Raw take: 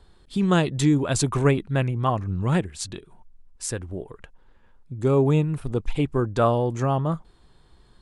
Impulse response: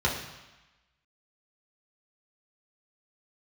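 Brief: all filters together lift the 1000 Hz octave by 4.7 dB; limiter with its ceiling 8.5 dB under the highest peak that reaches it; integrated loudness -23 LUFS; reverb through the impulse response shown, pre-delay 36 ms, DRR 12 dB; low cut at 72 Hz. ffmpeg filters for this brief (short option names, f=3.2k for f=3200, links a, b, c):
-filter_complex "[0:a]highpass=72,equalizer=f=1k:t=o:g=6,alimiter=limit=-13.5dB:level=0:latency=1,asplit=2[a][b];[1:a]atrim=start_sample=2205,adelay=36[c];[b][c]afir=irnorm=-1:irlink=0,volume=-24dB[d];[a][d]amix=inputs=2:normalize=0,volume=1dB"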